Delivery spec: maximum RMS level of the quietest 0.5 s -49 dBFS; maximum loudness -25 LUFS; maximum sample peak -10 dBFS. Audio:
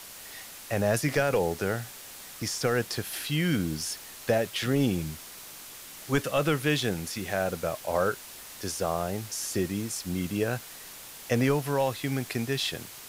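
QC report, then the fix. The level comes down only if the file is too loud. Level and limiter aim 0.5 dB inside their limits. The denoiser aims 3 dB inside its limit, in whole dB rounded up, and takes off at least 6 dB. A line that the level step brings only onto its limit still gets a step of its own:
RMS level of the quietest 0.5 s -45 dBFS: fail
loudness -29.0 LUFS: OK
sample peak -11.5 dBFS: OK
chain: denoiser 7 dB, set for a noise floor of -45 dBFS

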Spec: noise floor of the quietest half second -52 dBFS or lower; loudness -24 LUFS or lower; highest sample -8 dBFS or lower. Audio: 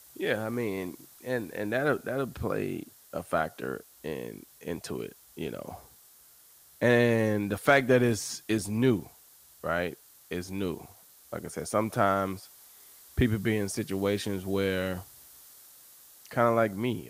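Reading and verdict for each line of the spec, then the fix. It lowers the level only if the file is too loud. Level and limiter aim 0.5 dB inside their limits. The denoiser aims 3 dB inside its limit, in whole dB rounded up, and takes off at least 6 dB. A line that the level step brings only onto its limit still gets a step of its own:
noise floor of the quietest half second -57 dBFS: OK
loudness -29.5 LUFS: OK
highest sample -10.0 dBFS: OK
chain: none

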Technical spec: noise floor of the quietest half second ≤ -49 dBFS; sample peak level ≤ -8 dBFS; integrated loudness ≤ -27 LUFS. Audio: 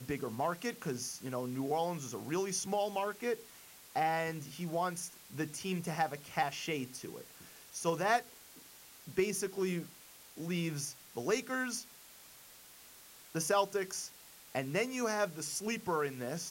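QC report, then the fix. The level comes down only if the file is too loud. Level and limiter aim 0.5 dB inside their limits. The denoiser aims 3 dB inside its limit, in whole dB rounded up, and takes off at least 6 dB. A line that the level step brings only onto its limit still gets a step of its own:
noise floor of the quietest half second -56 dBFS: OK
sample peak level -19.0 dBFS: OK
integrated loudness -36.0 LUFS: OK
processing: none

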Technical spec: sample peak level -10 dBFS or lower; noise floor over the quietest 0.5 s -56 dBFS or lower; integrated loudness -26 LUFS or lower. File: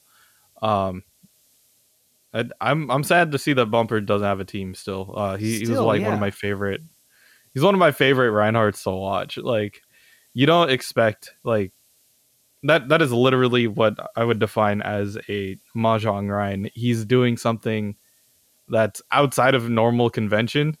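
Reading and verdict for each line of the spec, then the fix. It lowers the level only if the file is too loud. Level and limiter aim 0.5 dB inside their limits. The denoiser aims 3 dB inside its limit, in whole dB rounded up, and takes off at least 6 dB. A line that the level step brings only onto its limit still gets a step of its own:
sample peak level -5.5 dBFS: fail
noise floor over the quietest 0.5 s -63 dBFS: OK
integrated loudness -21.0 LUFS: fail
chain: gain -5.5 dB

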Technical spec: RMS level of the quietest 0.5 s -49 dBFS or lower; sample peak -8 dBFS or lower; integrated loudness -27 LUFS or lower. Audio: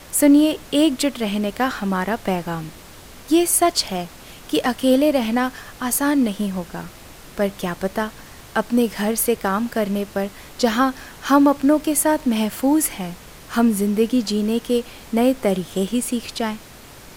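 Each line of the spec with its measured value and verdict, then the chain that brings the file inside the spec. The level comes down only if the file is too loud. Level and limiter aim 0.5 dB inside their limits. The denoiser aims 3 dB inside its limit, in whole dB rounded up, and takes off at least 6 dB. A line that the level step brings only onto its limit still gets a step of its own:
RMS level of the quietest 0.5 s -42 dBFS: fail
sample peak -3.0 dBFS: fail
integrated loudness -20.5 LUFS: fail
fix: denoiser 6 dB, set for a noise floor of -42 dBFS; gain -7 dB

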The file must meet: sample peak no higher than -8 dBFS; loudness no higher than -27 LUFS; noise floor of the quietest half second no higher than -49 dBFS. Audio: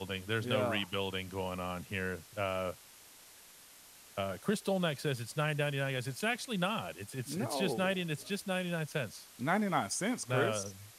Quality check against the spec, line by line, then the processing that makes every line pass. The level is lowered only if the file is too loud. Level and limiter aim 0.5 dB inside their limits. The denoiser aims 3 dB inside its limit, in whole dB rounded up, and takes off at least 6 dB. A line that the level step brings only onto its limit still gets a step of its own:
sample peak -16.5 dBFS: OK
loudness -35.0 LUFS: OK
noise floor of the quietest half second -57 dBFS: OK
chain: none

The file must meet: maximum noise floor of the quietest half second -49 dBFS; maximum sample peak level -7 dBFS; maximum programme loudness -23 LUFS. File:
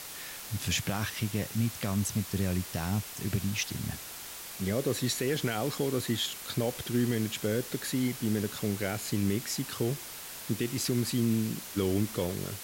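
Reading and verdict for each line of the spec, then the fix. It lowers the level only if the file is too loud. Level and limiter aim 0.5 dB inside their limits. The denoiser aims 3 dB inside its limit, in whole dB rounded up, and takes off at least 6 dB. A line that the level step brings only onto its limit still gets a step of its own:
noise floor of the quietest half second -43 dBFS: fail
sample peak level -18.0 dBFS: OK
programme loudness -31.5 LUFS: OK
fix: denoiser 9 dB, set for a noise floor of -43 dBFS

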